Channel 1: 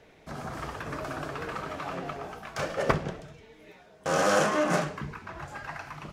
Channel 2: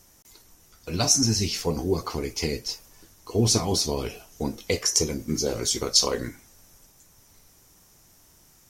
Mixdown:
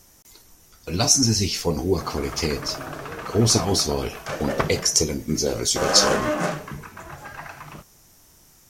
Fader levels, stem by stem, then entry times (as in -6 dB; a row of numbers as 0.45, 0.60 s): +1.5, +3.0 dB; 1.70, 0.00 s